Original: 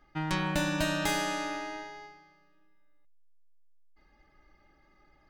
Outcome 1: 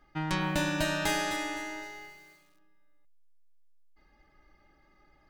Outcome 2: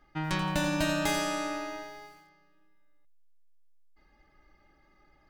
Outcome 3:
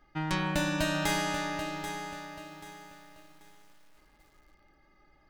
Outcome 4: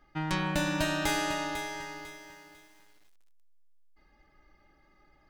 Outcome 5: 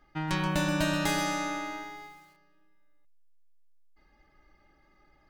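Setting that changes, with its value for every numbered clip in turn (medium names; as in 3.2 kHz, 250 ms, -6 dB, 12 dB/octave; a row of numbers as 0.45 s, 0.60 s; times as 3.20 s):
bit-crushed delay, time: 256 ms, 85 ms, 785 ms, 498 ms, 129 ms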